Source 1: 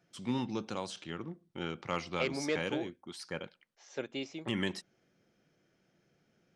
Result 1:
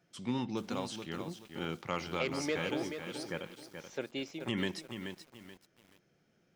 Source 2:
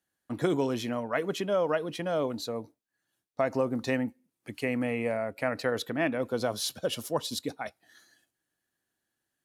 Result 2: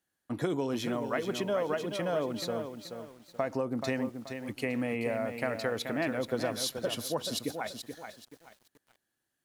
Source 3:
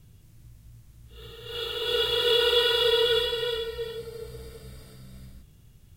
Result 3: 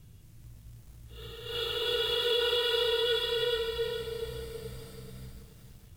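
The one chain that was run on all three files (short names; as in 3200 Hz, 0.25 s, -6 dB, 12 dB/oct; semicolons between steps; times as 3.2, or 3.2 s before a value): compressor 3:1, threshold -28 dBFS; lo-fi delay 0.43 s, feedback 35%, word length 9-bit, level -7.5 dB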